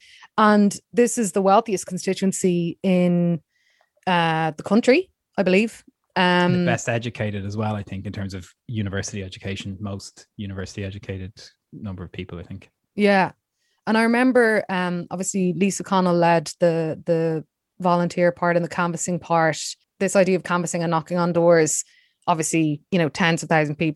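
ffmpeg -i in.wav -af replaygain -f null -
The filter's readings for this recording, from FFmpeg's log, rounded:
track_gain = +0.9 dB
track_peak = 0.525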